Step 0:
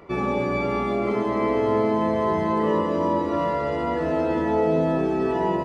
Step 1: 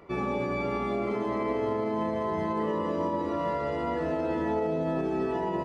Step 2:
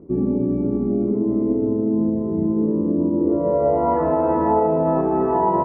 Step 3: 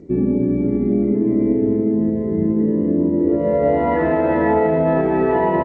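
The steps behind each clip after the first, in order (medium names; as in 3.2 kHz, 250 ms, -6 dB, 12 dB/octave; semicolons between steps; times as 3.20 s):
peak limiter -15.5 dBFS, peak gain reduction 5.5 dB; trim -5 dB
upward compressor, threshold -53 dBFS; low-pass sweep 290 Hz -> 1 kHz, 3.09–4.00 s; distance through air 140 m; trim +8 dB
resonant high shelf 1.5 kHz +9 dB, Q 3; delay 724 ms -12 dB; trim +3 dB; G.722 64 kbps 16 kHz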